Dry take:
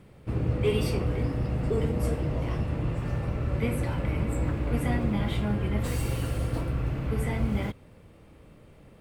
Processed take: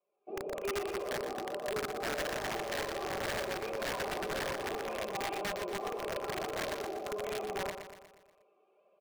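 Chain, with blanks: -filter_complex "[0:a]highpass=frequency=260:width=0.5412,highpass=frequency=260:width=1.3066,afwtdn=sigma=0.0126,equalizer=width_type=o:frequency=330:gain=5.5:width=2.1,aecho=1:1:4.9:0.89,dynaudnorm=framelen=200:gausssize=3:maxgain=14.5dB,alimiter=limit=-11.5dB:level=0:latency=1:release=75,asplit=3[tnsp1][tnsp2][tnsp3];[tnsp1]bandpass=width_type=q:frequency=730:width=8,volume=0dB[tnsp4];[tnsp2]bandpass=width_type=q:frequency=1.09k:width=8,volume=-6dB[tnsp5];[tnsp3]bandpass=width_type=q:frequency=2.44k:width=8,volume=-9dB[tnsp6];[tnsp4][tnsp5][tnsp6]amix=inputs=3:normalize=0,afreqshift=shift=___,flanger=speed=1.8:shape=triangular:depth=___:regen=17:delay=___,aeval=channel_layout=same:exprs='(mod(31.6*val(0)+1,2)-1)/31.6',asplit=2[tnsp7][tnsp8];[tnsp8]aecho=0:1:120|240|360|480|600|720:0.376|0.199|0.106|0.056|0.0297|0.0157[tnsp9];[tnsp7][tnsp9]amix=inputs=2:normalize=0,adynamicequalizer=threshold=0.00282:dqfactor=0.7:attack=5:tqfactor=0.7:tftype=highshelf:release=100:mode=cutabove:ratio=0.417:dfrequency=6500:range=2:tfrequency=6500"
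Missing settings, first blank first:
-19, 1, 1.7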